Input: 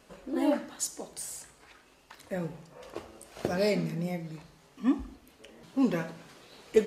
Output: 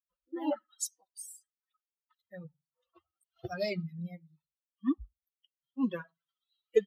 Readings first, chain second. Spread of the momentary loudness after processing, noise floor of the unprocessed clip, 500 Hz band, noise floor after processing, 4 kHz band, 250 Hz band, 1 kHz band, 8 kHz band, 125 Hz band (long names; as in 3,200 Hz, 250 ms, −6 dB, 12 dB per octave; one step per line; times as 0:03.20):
18 LU, −60 dBFS, −4.5 dB, below −85 dBFS, −6.0 dB, −6.0 dB, −6.0 dB, −4.0 dB, −7.0 dB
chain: spectral dynamics exaggerated over time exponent 3